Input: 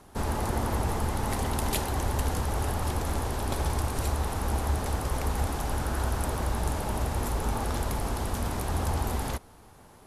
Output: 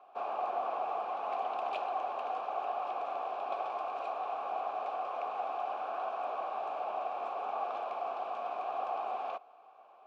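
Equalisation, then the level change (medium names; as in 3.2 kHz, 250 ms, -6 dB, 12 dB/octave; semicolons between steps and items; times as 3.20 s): vowel filter a; band-pass 440–3500 Hz; +7.5 dB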